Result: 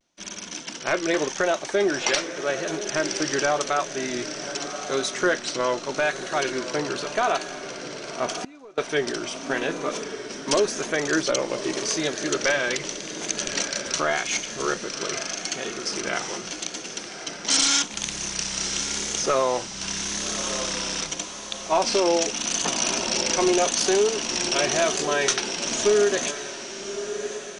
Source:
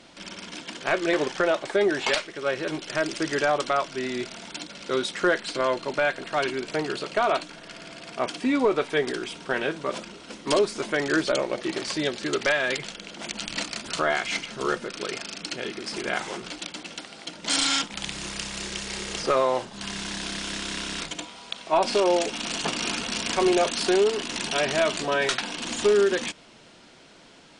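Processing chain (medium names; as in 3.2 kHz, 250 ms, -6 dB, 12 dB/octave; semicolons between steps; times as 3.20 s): gate -44 dBFS, range -24 dB; peaking EQ 6 kHz +14.5 dB 0.28 oct; echo that smears into a reverb 1167 ms, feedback 41%, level -10 dB; vibrato 0.85 Hz 64 cents; 8.30–8.78 s: inverted gate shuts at -20 dBFS, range -24 dB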